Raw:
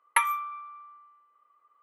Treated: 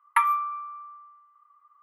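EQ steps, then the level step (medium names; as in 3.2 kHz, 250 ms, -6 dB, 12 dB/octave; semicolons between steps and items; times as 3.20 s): resonant low shelf 750 Hz -13 dB, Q 3; peaking EQ 7 kHz -10.5 dB 2.8 oct; 0.0 dB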